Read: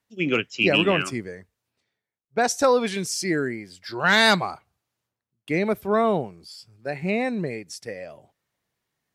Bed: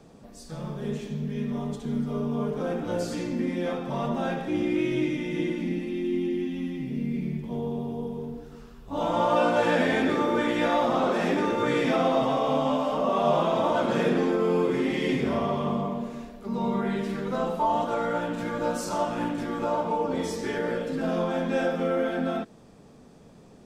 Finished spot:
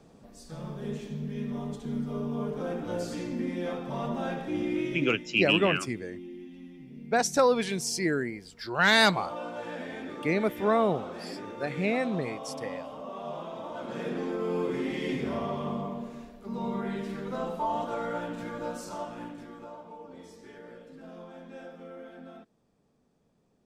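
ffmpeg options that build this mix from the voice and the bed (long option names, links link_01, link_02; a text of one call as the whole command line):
ffmpeg -i stem1.wav -i stem2.wav -filter_complex "[0:a]adelay=4750,volume=-3.5dB[link_01];[1:a]volume=5.5dB,afade=type=out:start_time=4.77:duration=0.51:silence=0.281838,afade=type=in:start_time=13.7:duration=0.96:silence=0.334965,afade=type=out:start_time=18.23:duration=1.55:silence=0.211349[link_02];[link_01][link_02]amix=inputs=2:normalize=0" out.wav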